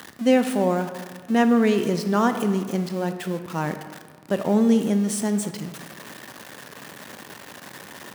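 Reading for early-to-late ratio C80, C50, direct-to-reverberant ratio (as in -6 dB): 11.0 dB, 9.5 dB, 8.0 dB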